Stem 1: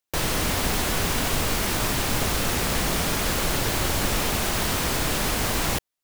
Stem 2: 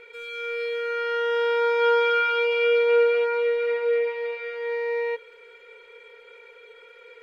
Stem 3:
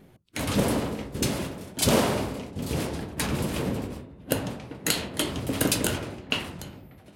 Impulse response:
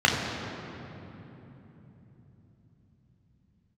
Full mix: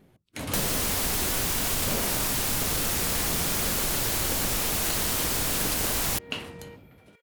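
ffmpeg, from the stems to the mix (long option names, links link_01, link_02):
-filter_complex "[0:a]aemphasis=mode=production:type=cd,adelay=400,volume=-0.5dB[link_01];[1:a]acompressor=threshold=-32dB:ratio=6,acrusher=bits=10:mix=0:aa=0.000001,adelay=1600,volume=-13dB[link_02];[2:a]volume=-5dB[link_03];[link_01][link_02][link_03]amix=inputs=3:normalize=0,acompressor=threshold=-24dB:ratio=4"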